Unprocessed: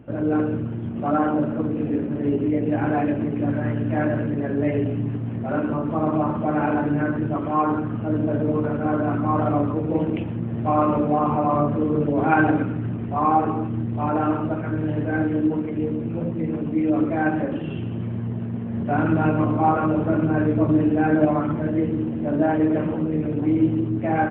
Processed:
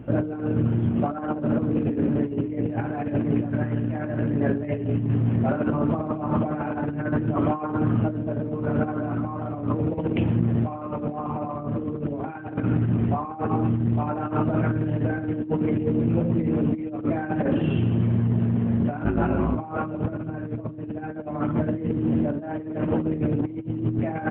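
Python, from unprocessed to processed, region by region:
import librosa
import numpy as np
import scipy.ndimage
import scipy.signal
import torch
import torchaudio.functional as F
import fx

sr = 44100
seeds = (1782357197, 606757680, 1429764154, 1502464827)

y = fx.chain(x, sr, fx.ring_mod(carrier_hz=53.0),
    fx.detune_double(cents=27), at=(19.04, 19.56))
y = fx.low_shelf(y, sr, hz=210.0, db=4.0)
y = fx.over_compress(y, sr, threshold_db=-24.0, ratio=-0.5)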